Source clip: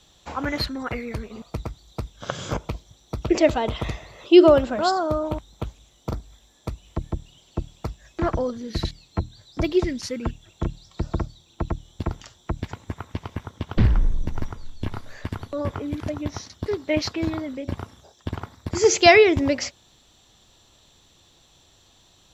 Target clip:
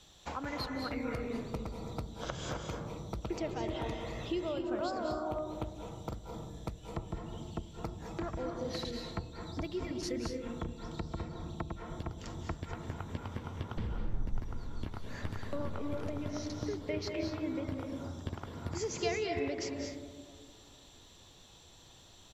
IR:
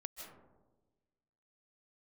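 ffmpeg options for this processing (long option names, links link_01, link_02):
-filter_complex "[0:a]asettb=1/sr,asplit=3[link_01][link_02][link_03];[link_01]atrim=end=8.464[link_04];[link_02]atrim=start=8.46:end=8.87,asetpts=PTS-STARTPTS,afade=type=in:duration=0.004:curve=qsin,afade=type=out:start_time=0.406:duration=0.004:curve=qsin,highpass=frequency=430:poles=1[link_05];[link_03]atrim=start=8.866[link_06];[link_04][link_05]acrossfade=duration=0.004:curve1=hsin:curve2=qsin[link_07];[link_07][link_06]acrossfade=duration=0.004:curve1=qsin:curve2=hsin,acompressor=threshold=-34dB:ratio=5,asplit=2[link_08][link_09];[link_09]adelay=991.3,volume=-29dB,highshelf=frequency=4000:gain=-22.3[link_10];[link_08][link_10]amix=inputs=2:normalize=0[link_11];[1:a]atrim=start_sample=2205,asetrate=32634,aresample=44100[link_12];[link_11][link_12]afir=irnorm=-1:irlink=0,volume=1dB"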